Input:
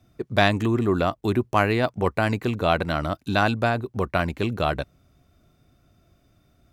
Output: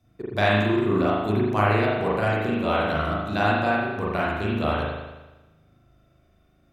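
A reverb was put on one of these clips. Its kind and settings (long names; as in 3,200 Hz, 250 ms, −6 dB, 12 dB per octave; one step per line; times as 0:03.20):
spring reverb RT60 1.1 s, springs 38 ms, chirp 60 ms, DRR −6.5 dB
level −7 dB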